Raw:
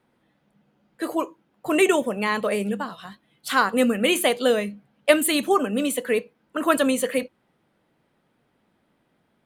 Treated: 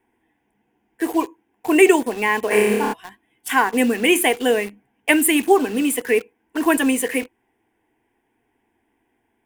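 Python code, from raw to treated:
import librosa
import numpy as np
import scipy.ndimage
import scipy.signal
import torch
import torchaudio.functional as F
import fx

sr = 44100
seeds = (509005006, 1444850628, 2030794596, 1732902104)

p1 = fx.fixed_phaser(x, sr, hz=850.0, stages=8)
p2 = fx.quant_dither(p1, sr, seeds[0], bits=6, dither='none')
p3 = p1 + F.gain(torch.from_numpy(p2), -4.0).numpy()
p4 = fx.room_flutter(p3, sr, wall_m=4.9, rt60_s=1.0, at=(2.5, 2.92), fade=0.02)
y = F.gain(torch.from_numpy(p4), 2.5).numpy()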